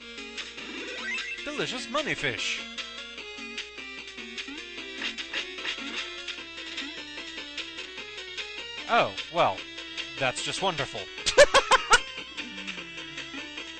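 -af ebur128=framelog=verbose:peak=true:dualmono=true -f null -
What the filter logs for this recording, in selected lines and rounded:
Integrated loudness:
  I:         -25.8 LUFS
  Threshold: -35.8 LUFS
Loudness range:
  LRA:        10.3 LU
  Threshold: -45.9 LUFS
  LRA low:   -31.6 LUFS
  LRA high:  -21.3 LUFS
True peak:
  Peak:       -7.4 dBFS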